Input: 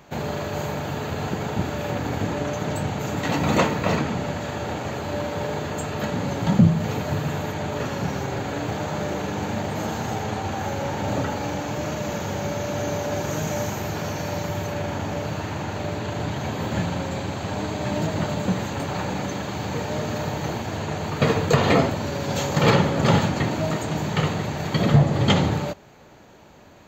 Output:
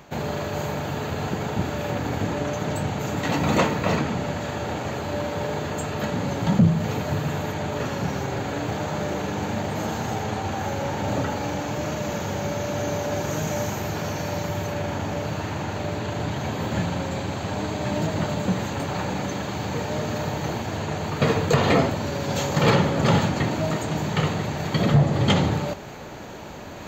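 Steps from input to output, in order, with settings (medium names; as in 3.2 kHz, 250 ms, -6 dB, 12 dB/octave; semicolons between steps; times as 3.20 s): reverse; upward compressor, threshold -26 dBFS; reverse; saturation -7.5 dBFS, distortion -22 dB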